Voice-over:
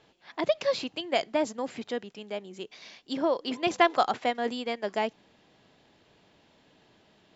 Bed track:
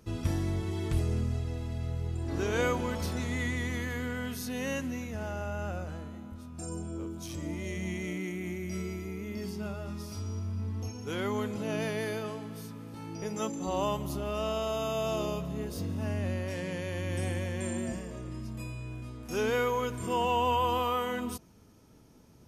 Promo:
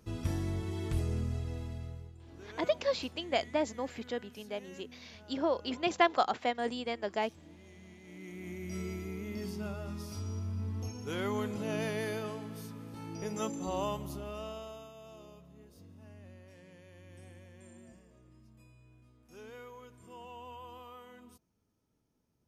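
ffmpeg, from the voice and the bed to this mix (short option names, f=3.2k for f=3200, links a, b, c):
-filter_complex "[0:a]adelay=2200,volume=-4dB[a];[1:a]volume=13.5dB,afade=t=out:st=1.6:d=0.53:silence=0.16788,afade=t=in:st=8.04:d=0.86:silence=0.141254,afade=t=out:st=13.49:d=1.43:silence=0.11885[b];[a][b]amix=inputs=2:normalize=0"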